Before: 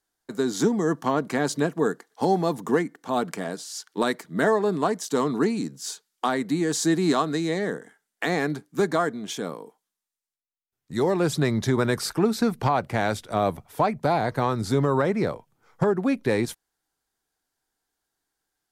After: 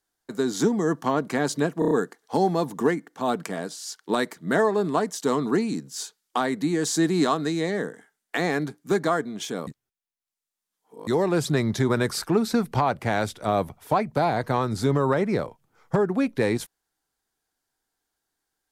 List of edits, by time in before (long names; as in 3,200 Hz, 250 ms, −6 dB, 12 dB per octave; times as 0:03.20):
0:01.79: stutter 0.03 s, 5 plays
0:09.55–0:10.95: reverse